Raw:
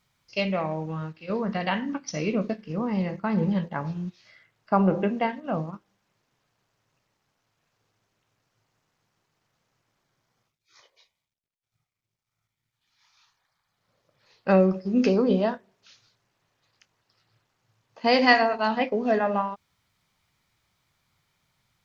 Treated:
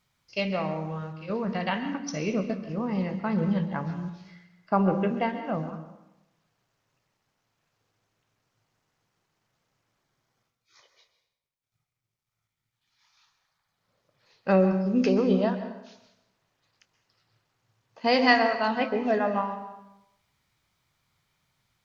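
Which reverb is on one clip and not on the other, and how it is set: plate-style reverb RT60 0.89 s, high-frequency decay 0.75×, pre-delay 115 ms, DRR 9.5 dB; trim -2 dB

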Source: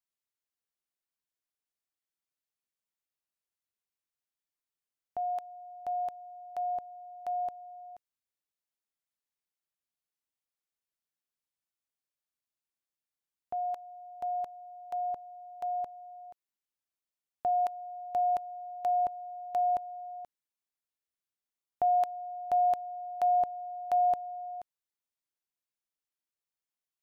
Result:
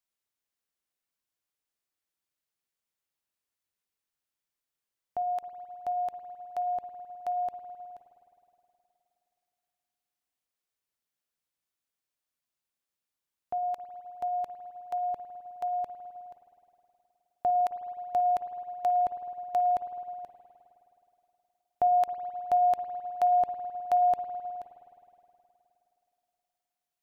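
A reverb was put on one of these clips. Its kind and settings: spring tank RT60 3 s, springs 52 ms, chirp 70 ms, DRR 9 dB; trim +3 dB

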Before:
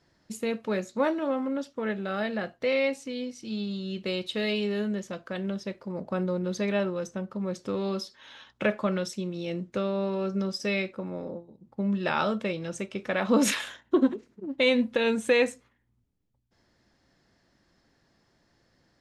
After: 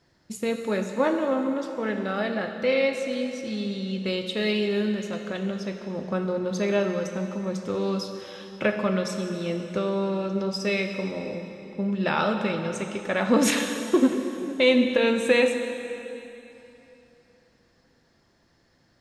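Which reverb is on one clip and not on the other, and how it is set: plate-style reverb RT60 3.1 s, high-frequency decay 0.9×, DRR 5 dB; trim +2 dB

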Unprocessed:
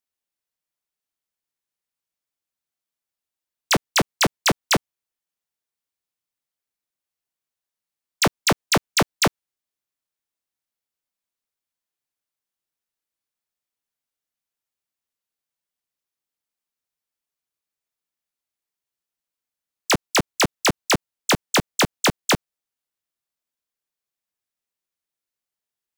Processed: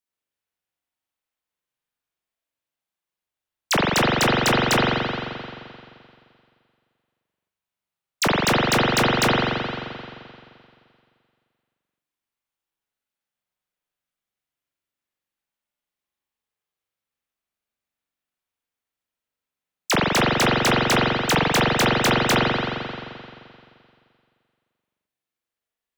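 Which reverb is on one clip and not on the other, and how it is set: spring tank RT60 2.3 s, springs 43 ms, chirp 45 ms, DRR -5.5 dB; trim -3 dB

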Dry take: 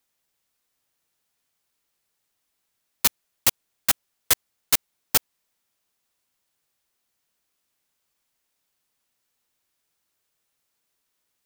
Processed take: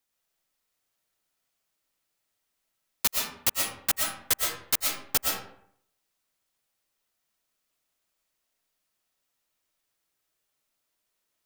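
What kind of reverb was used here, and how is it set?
algorithmic reverb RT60 0.67 s, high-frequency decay 0.6×, pre-delay 80 ms, DRR -1 dB; trim -5.5 dB

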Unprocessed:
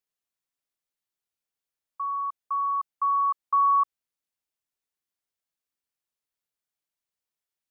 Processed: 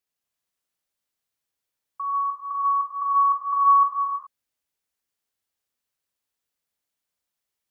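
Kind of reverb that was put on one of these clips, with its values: gated-style reverb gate 440 ms flat, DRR -0.5 dB; trim +2 dB

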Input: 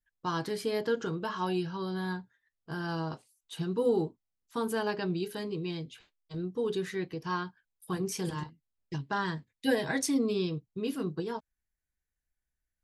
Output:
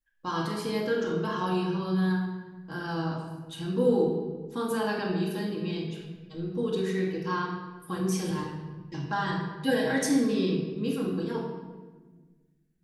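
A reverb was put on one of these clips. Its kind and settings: simulated room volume 1100 m³, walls mixed, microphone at 2.2 m; trim -1.5 dB

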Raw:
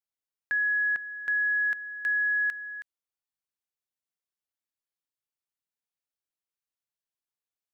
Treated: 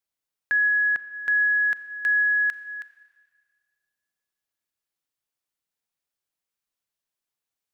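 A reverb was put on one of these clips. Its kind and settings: Schroeder reverb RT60 1.9 s, combs from 29 ms, DRR 13.5 dB; trim +5 dB

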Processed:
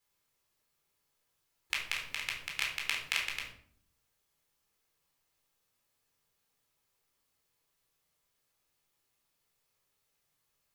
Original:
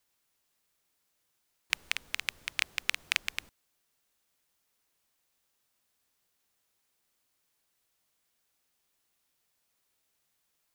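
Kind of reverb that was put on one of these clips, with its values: simulated room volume 810 m³, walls furnished, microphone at 4.1 m; trim -6.5 dB

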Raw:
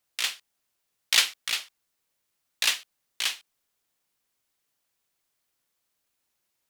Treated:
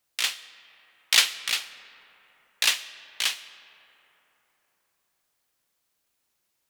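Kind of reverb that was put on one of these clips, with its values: algorithmic reverb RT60 4.1 s, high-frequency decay 0.4×, pre-delay 70 ms, DRR 15.5 dB; trim +2 dB

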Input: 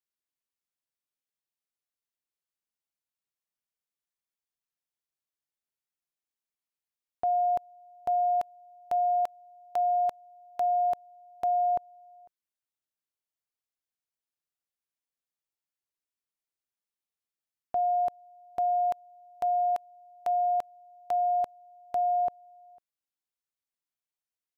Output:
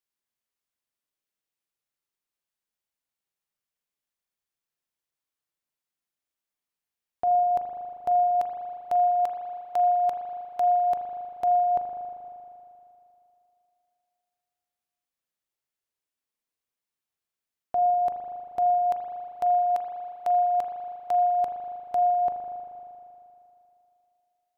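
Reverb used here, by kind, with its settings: spring tank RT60 2.8 s, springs 39 ms, chirp 75 ms, DRR 3.5 dB; trim +2 dB

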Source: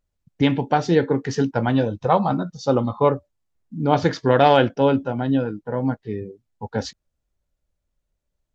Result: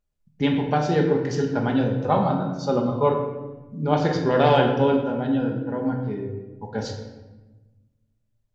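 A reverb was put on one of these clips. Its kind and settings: simulated room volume 700 m³, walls mixed, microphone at 1.3 m; trim -5 dB

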